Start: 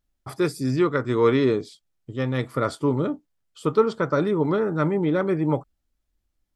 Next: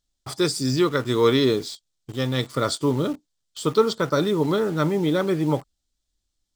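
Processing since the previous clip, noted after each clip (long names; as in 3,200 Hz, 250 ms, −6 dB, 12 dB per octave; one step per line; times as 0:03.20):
flat-topped bell 5,300 Hz +12 dB
in parallel at −5 dB: bit reduction 6 bits
on the sum: level −3.5 dB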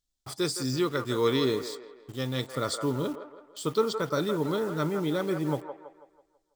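high-shelf EQ 10,000 Hz +7.5 dB
on a send: delay with a band-pass on its return 164 ms, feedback 43%, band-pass 960 Hz, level −6 dB
on the sum: level −7 dB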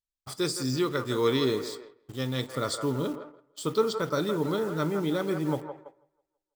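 noise gate −45 dBFS, range −14 dB
on a send at −15 dB: convolution reverb RT60 0.50 s, pre-delay 11 ms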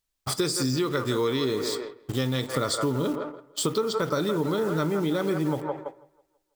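in parallel at −2.5 dB: brickwall limiter −23.5 dBFS, peak gain reduction 10.5 dB
on the sum: downward compressor 6 to 1, threshold −30 dBFS, peak gain reduction 13 dB
level +7 dB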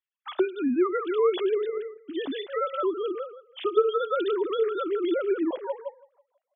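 three sine waves on the formant tracks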